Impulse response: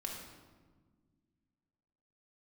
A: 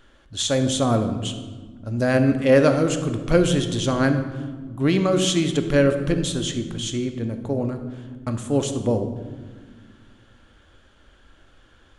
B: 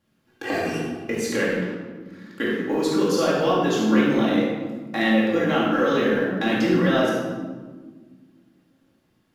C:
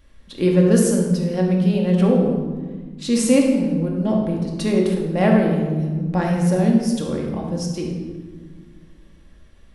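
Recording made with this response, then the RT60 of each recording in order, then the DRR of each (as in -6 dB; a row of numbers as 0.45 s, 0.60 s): C; no single decay rate, 1.5 s, 1.5 s; 7.0 dB, -7.0 dB, -1.0 dB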